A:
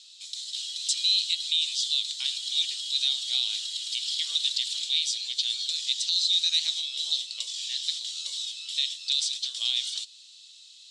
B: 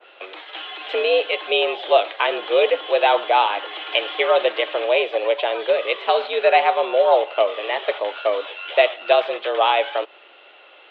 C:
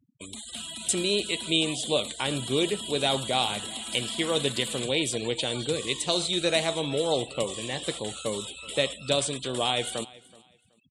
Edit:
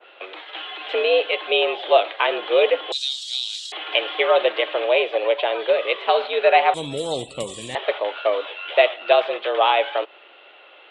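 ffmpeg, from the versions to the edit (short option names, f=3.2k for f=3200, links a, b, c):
-filter_complex "[1:a]asplit=3[a][b][c];[a]atrim=end=2.922[d];[0:a]atrim=start=2.918:end=3.722[e];[b]atrim=start=3.718:end=6.742[f];[2:a]atrim=start=6.738:end=7.752[g];[c]atrim=start=7.748[h];[d][e]acrossfade=d=0.004:c1=hsin:c2=hsin[i];[i][f]acrossfade=d=0.004:c1=hsin:c2=hsin[j];[j][g]acrossfade=d=0.004:c1=hsin:c2=hsin[k];[k][h]acrossfade=d=0.004:c1=hsin:c2=hsin"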